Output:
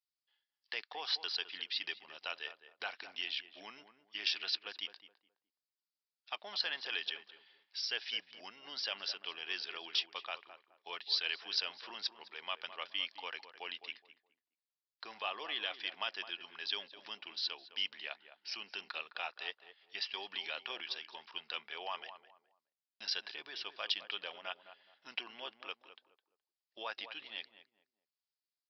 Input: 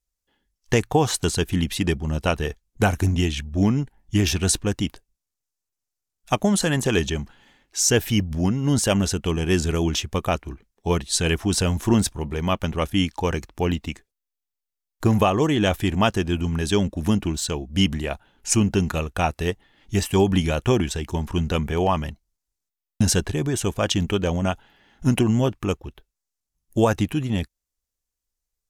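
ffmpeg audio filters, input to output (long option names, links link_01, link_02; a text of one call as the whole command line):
ffmpeg -i in.wav -filter_complex "[0:a]alimiter=limit=-11.5dB:level=0:latency=1:release=22,highpass=540,aderivative,asplit=2[link_01][link_02];[link_02]adelay=210,lowpass=frequency=1200:poles=1,volume=-10dB,asplit=2[link_03][link_04];[link_04]adelay=210,lowpass=frequency=1200:poles=1,volume=0.3,asplit=2[link_05][link_06];[link_06]adelay=210,lowpass=frequency=1200:poles=1,volume=0.3[link_07];[link_01][link_03][link_05][link_07]amix=inputs=4:normalize=0,aresample=11025,aresample=44100,volume=1dB" out.wav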